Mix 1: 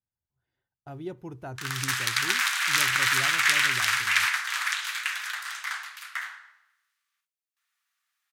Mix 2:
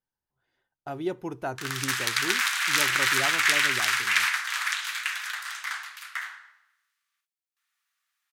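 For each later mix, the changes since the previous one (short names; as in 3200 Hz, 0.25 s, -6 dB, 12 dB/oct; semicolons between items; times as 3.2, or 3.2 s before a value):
speech +9.0 dB; master: add bell 92 Hz -15 dB 1.8 oct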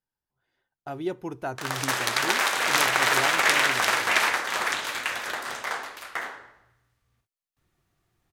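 background: remove HPF 1300 Hz 24 dB/oct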